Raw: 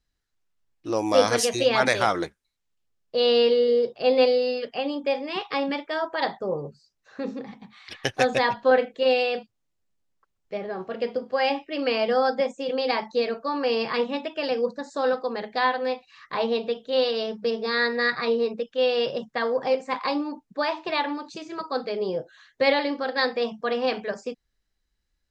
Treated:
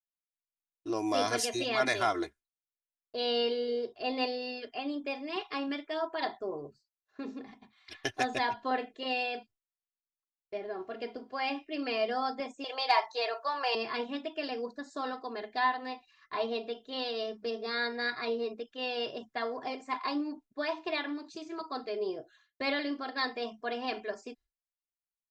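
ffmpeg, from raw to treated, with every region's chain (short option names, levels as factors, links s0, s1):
-filter_complex "[0:a]asettb=1/sr,asplit=3[s0][s1][s2];[s0]atrim=end=12.644[s3];[s1]atrim=start=12.64:end=13.75,asetpts=PTS-STARTPTS,afade=t=in:d=0.004:c=qsin,afade=t=out:st=1.106:d=0.004:c=qsin,highpass=f=550:w=0.5412,highpass=f=550:w=1.3066,equalizer=f=900:w=6.5:g=10,acontrast=55[s4];[s2]atrim=start=13.746[s5];[s3][s4]acrossfade=d=0.004:c1=hsin:c2=qsin[s6];[s6][s5]acrossfade=d=0.004:c1=qsin:c2=hsin,agate=range=0.0224:threshold=0.00708:ratio=3:detection=peak,aecho=1:1:2.9:0.75,volume=0.355"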